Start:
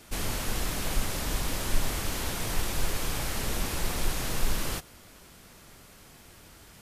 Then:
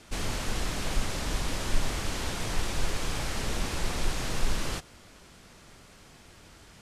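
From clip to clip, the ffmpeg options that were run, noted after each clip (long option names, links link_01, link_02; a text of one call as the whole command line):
ffmpeg -i in.wav -af "lowpass=8100" out.wav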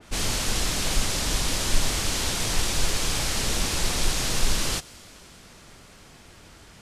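ffmpeg -i in.wav -af "adynamicequalizer=threshold=0.00224:dfrequency=2800:dqfactor=0.7:tfrequency=2800:tqfactor=0.7:attack=5:release=100:ratio=0.375:range=4:mode=boostabove:tftype=highshelf,volume=3.5dB" out.wav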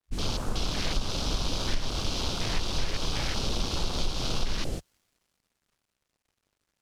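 ffmpeg -i in.wav -af "aeval=exprs='sgn(val(0))*max(abs(val(0))-0.00562,0)':channel_layout=same,afwtdn=0.0282,acompressor=threshold=-22dB:ratio=6" out.wav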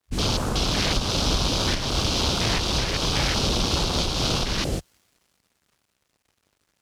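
ffmpeg -i in.wav -af "highpass=44,volume=8.5dB" out.wav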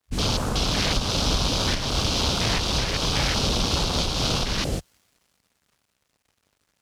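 ffmpeg -i in.wav -af "equalizer=frequency=350:width=5.1:gain=-3.5" out.wav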